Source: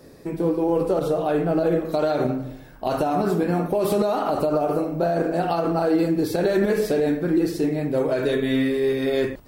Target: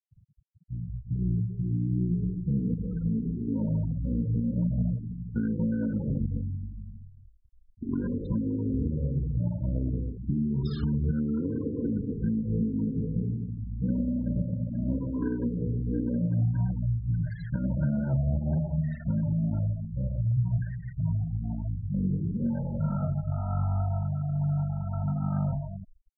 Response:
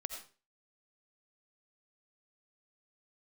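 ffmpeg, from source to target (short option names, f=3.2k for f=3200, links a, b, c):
-af "asetrate=15964,aresample=44100,afftfilt=real='re*gte(hypot(re,im),0.0501)':imag='im*gte(hypot(re,im),0.0501)':win_size=1024:overlap=0.75,volume=-6.5dB"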